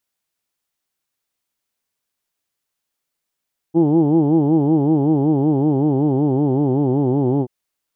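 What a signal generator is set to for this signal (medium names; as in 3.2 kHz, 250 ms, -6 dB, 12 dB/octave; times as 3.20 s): formant vowel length 3.73 s, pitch 157 Hz, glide -3 st, vibrato depth 1.4 st, F1 340 Hz, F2 830 Hz, F3 3.1 kHz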